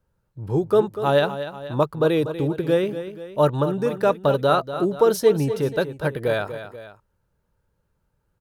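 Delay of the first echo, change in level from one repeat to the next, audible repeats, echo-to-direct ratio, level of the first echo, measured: 242 ms, -5.5 dB, 2, -10.5 dB, -11.5 dB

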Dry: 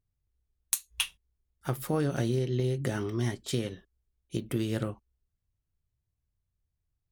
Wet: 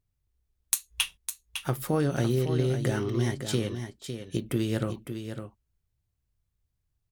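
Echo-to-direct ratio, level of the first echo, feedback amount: -8.5 dB, -8.5 dB, no regular repeats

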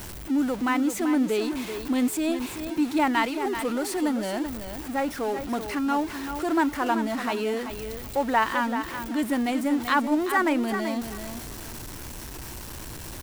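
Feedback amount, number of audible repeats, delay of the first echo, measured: 20%, 2, 384 ms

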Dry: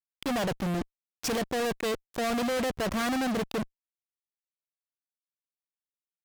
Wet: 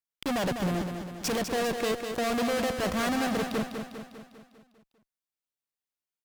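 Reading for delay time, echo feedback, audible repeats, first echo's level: 200 ms, 55%, 6, -7.0 dB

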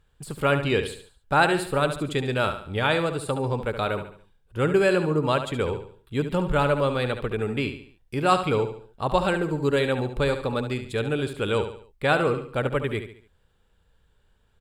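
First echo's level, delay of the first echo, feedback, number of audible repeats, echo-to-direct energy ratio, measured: -9.5 dB, 71 ms, 41%, 4, -8.5 dB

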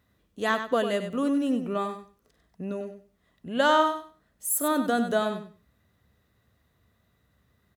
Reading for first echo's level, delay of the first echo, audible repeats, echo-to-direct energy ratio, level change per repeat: -9.0 dB, 97 ms, 2, -9.0 dB, -14.5 dB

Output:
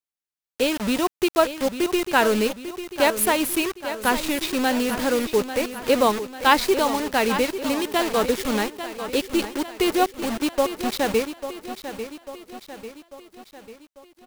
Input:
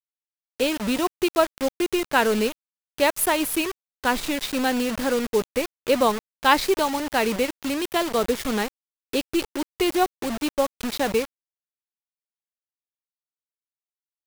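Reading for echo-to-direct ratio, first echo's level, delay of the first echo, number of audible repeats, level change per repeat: -9.5 dB, -11.0 dB, 845 ms, 5, -5.5 dB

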